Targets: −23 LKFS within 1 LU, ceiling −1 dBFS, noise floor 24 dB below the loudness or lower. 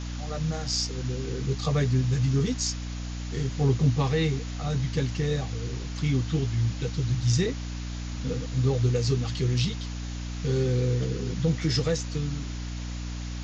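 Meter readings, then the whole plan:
mains hum 60 Hz; hum harmonics up to 300 Hz; level of the hum −31 dBFS; background noise floor −34 dBFS; target noise floor −52 dBFS; integrated loudness −28.0 LKFS; sample peak −12.0 dBFS; target loudness −23.0 LKFS
→ hum removal 60 Hz, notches 5
broadband denoise 18 dB, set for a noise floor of −34 dBFS
level +5 dB

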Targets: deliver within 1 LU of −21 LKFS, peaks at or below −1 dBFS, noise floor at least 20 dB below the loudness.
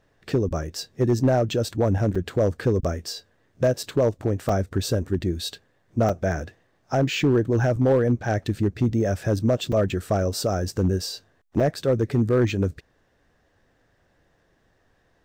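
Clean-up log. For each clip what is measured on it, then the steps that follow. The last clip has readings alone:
share of clipped samples 0.8%; peaks flattened at −13.0 dBFS; number of dropouts 7; longest dropout 4.7 ms; integrated loudness −24.0 LKFS; sample peak −13.0 dBFS; target loudness −21.0 LKFS
→ clipped peaks rebuilt −13 dBFS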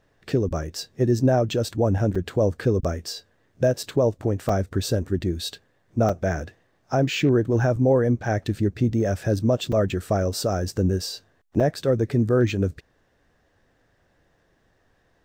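share of clipped samples 0.0%; number of dropouts 7; longest dropout 4.7 ms
→ repair the gap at 0:02.15/0:03.83/0:04.49/0:06.09/0:07.76/0:09.72/0:11.60, 4.7 ms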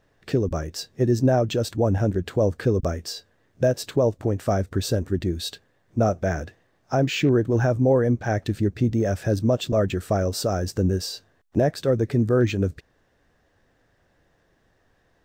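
number of dropouts 0; integrated loudness −23.5 LKFS; sample peak −8.5 dBFS; target loudness −21.0 LKFS
→ level +2.5 dB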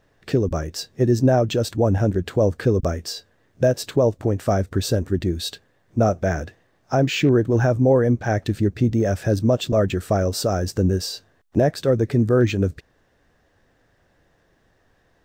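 integrated loudness −21.0 LKFS; sample peak −6.0 dBFS; background noise floor −63 dBFS

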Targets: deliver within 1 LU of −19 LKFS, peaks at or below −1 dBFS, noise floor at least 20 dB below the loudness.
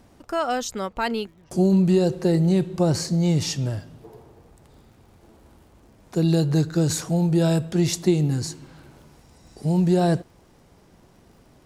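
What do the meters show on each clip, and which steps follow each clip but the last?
crackle rate 61 per second; integrated loudness −22.5 LKFS; sample peak −7.5 dBFS; target loudness −19.0 LKFS
→ click removal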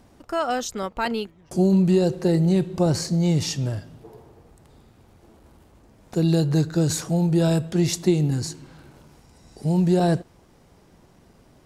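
crackle rate 0.34 per second; integrated loudness −22.5 LKFS; sample peak −7.5 dBFS; target loudness −19.0 LKFS
→ level +3.5 dB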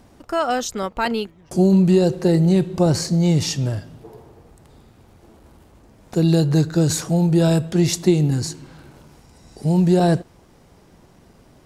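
integrated loudness −19.0 LKFS; sample peak −4.0 dBFS; background noise floor −52 dBFS

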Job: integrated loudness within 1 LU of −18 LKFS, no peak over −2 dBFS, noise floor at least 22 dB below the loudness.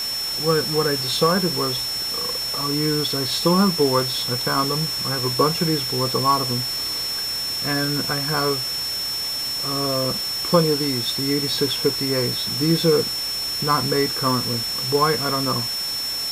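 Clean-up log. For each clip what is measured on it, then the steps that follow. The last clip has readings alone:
interfering tone 5,400 Hz; level of the tone −24 dBFS; background noise floor −26 dBFS; target noise floor −43 dBFS; integrated loudness −20.5 LKFS; sample peak −4.5 dBFS; target loudness −18.0 LKFS
→ notch filter 5,400 Hz, Q 30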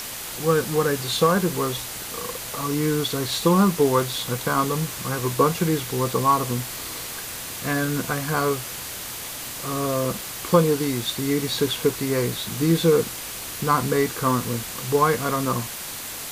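interfering tone none found; background noise floor −34 dBFS; target noise floor −46 dBFS
→ noise reduction from a noise print 12 dB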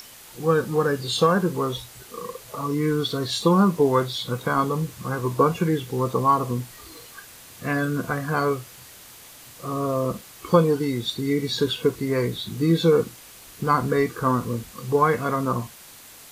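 background noise floor −46 dBFS; integrated loudness −23.5 LKFS; sample peak −5.0 dBFS; target loudness −18.0 LKFS
→ level +5.5 dB
brickwall limiter −2 dBFS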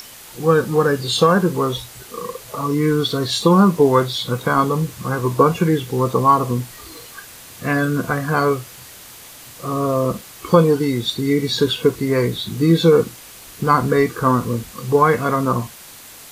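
integrated loudness −18.0 LKFS; sample peak −2.0 dBFS; background noise floor −40 dBFS

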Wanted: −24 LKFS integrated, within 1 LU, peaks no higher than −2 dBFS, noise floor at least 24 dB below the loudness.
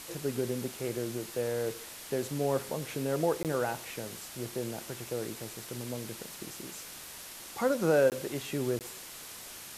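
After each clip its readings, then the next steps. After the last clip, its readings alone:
number of dropouts 3; longest dropout 18 ms; background noise floor −46 dBFS; target noise floor −58 dBFS; integrated loudness −34.0 LKFS; sample peak −14.5 dBFS; target loudness −24.0 LKFS
→ repair the gap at 0:03.43/0:08.10/0:08.79, 18 ms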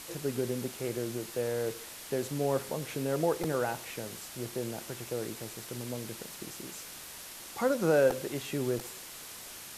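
number of dropouts 0; background noise floor −46 dBFS; target noise floor −58 dBFS
→ broadband denoise 12 dB, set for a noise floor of −46 dBFS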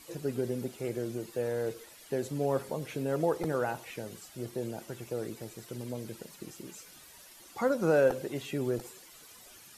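background noise floor −54 dBFS; target noise floor −58 dBFS
→ broadband denoise 6 dB, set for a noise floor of −54 dBFS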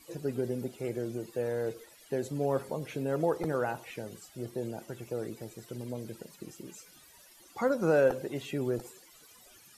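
background noise floor −58 dBFS; integrated loudness −33.5 LKFS; sample peak −15.0 dBFS; target loudness −24.0 LKFS
→ level +9.5 dB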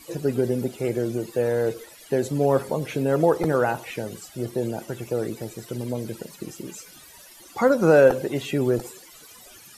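integrated loudness −24.0 LKFS; sample peak −5.5 dBFS; background noise floor −48 dBFS

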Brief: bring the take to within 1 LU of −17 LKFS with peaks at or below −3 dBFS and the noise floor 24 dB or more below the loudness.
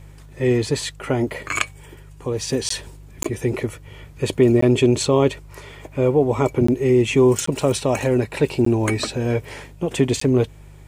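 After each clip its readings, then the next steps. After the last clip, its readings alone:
number of dropouts 7; longest dropout 14 ms; mains hum 50 Hz; hum harmonics up to 150 Hz; level of the hum −40 dBFS; integrated loudness −20.5 LKFS; sample peak −4.0 dBFS; target loudness −17.0 LKFS
→ repair the gap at 0:02.69/0:03.23/0:04.61/0:06.67/0:07.46/0:08.65/0:10.20, 14 ms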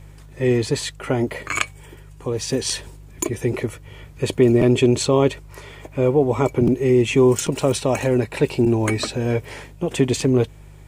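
number of dropouts 0; mains hum 50 Hz; hum harmonics up to 150 Hz; level of the hum −40 dBFS
→ hum removal 50 Hz, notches 3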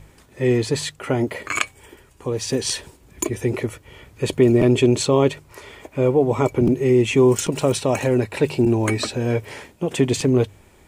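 mains hum none found; integrated loudness −20.5 LKFS; sample peak −4.0 dBFS; target loudness −17.0 LKFS
→ level +3.5 dB
brickwall limiter −3 dBFS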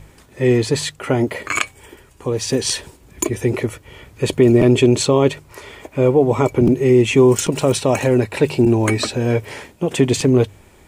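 integrated loudness −17.0 LKFS; sample peak −3.0 dBFS; background noise floor −49 dBFS

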